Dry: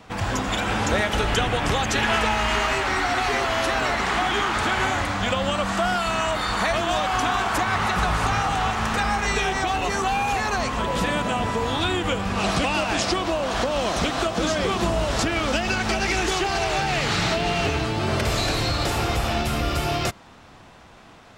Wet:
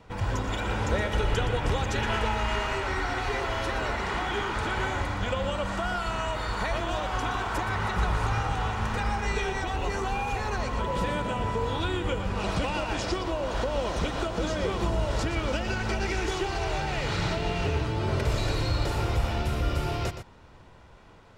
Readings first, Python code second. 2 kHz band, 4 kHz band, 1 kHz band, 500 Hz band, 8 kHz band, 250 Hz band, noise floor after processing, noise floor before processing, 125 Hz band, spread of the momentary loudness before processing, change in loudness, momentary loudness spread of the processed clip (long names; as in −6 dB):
−8.0 dB, −9.0 dB, −7.5 dB, −5.0 dB, −10.5 dB, −6.0 dB, −51 dBFS, −47 dBFS, −1.5 dB, 2 LU, −6.0 dB, 3 LU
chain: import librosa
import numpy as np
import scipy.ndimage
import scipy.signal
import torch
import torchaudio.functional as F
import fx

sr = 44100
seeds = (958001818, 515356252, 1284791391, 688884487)

y = fx.tilt_eq(x, sr, slope=-1.5)
y = y + 0.34 * np.pad(y, (int(2.1 * sr / 1000.0), 0))[:len(y)]
y = y + 10.0 ** (-10.0 / 20.0) * np.pad(y, (int(119 * sr / 1000.0), 0))[:len(y)]
y = F.gain(torch.from_numpy(y), -7.5).numpy()